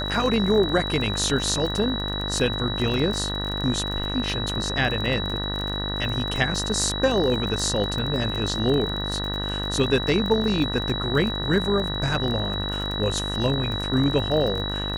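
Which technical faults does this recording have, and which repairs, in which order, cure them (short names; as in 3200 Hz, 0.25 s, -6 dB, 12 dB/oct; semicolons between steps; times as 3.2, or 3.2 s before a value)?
buzz 50 Hz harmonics 39 -30 dBFS
crackle 31/s -28 dBFS
tone 3900 Hz -29 dBFS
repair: de-click; de-hum 50 Hz, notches 39; notch 3900 Hz, Q 30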